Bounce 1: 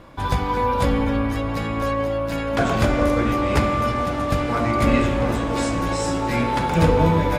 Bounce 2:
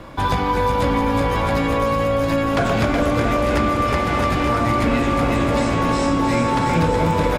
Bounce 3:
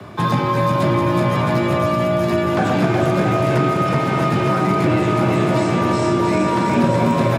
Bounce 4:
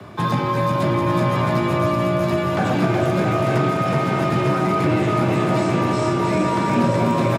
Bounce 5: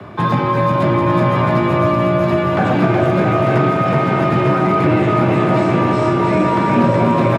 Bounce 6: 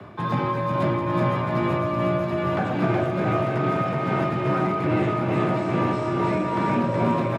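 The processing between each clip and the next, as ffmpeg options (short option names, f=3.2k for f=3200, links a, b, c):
-filter_complex "[0:a]acontrast=85,asplit=2[a][b];[b]aecho=0:1:370|666|902.8|1092|1244:0.631|0.398|0.251|0.158|0.1[c];[a][c]amix=inputs=2:normalize=0,acrossover=split=140|5600[d][e][f];[d]acompressor=threshold=-25dB:ratio=4[g];[e]acompressor=threshold=-17dB:ratio=4[h];[f]acompressor=threshold=-44dB:ratio=4[i];[g][h][i]amix=inputs=3:normalize=0"
-filter_complex "[0:a]lowshelf=f=150:g=5,acrossover=split=210|1500[a][b][c];[c]alimiter=limit=-23.5dB:level=0:latency=1:release=18[d];[a][b][d]amix=inputs=3:normalize=0,afreqshift=71"
-af "aecho=1:1:895:0.376,volume=-2.5dB"
-af "bass=f=250:g=-1,treble=f=4k:g=-12,volume=5dB"
-af "tremolo=f=2.4:d=0.35,volume=-7dB"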